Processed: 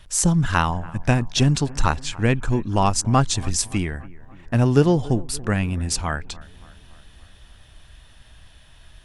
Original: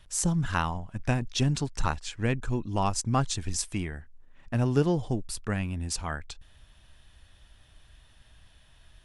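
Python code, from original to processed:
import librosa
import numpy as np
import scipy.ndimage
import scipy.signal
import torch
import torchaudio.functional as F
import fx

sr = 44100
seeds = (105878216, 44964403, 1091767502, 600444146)

y = fx.echo_bbd(x, sr, ms=286, stages=4096, feedback_pct=58, wet_db=-21.0)
y = y * 10.0 ** (8.0 / 20.0)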